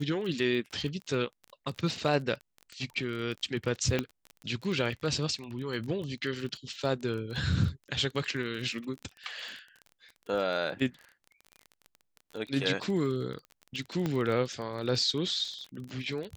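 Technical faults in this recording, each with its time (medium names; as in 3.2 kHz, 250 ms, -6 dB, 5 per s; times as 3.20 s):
crackle 25 per s -36 dBFS
3.99 s: pop -15 dBFS
14.06 s: pop -18 dBFS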